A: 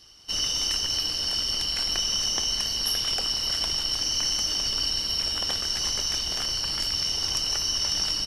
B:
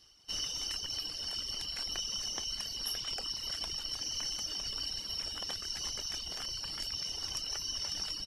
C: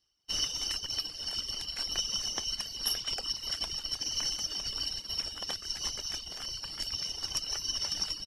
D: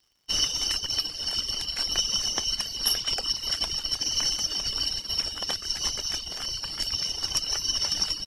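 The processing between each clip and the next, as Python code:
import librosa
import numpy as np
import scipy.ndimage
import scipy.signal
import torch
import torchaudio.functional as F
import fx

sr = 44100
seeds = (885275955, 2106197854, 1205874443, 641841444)

y1 = fx.dereverb_blind(x, sr, rt60_s=1.0)
y1 = F.gain(torch.from_numpy(y1), -8.5).numpy()
y2 = fx.upward_expand(y1, sr, threshold_db=-50.0, expansion=2.5)
y2 = F.gain(torch.from_numpy(y2), 7.5).numpy()
y3 = fx.dmg_crackle(y2, sr, seeds[0], per_s=140.0, level_db=-62.0)
y3 = F.gain(torch.from_numpy(y3), 6.5).numpy()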